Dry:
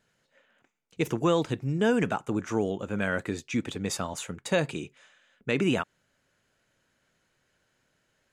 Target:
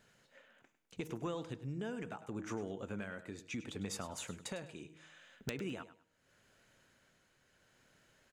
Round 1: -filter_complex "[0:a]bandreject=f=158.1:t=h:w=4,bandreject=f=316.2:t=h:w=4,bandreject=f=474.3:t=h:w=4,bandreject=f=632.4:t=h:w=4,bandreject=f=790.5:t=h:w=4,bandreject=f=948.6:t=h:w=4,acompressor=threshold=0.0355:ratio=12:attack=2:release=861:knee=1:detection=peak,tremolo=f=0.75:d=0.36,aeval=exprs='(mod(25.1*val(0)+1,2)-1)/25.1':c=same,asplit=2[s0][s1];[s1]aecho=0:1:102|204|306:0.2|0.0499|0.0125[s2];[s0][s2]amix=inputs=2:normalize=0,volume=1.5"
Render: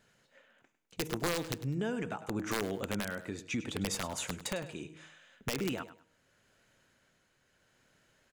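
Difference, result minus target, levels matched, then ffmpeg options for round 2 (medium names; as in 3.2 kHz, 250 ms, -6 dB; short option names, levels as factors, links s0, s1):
compression: peak gain reduction -7 dB
-filter_complex "[0:a]bandreject=f=158.1:t=h:w=4,bandreject=f=316.2:t=h:w=4,bandreject=f=474.3:t=h:w=4,bandreject=f=632.4:t=h:w=4,bandreject=f=790.5:t=h:w=4,bandreject=f=948.6:t=h:w=4,acompressor=threshold=0.015:ratio=12:attack=2:release=861:knee=1:detection=peak,tremolo=f=0.75:d=0.36,aeval=exprs='(mod(25.1*val(0)+1,2)-1)/25.1':c=same,asplit=2[s0][s1];[s1]aecho=0:1:102|204|306:0.2|0.0499|0.0125[s2];[s0][s2]amix=inputs=2:normalize=0,volume=1.5"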